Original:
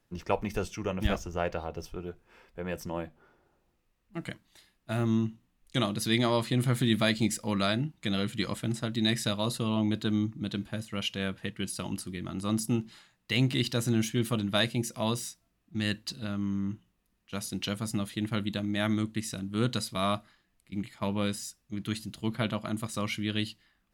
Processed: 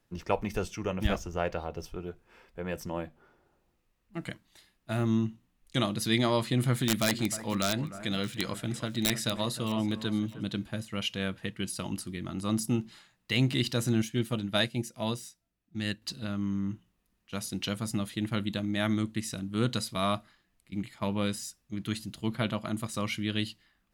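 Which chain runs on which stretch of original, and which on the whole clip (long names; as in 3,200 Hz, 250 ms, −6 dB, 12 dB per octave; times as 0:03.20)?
0:06.76–0:10.43: low-shelf EQ 420 Hz −3 dB + wrap-around overflow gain 16.5 dB + delay that swaps between a low-pass and a high-pass 309 ms, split 1,900 Hz, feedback 53%, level −13 dB
0:14.02–0:16.02: notch filter 1,100 Hz, Q 9.4 + expander for the loud parts, over −42 dBFS
whole clip: no processing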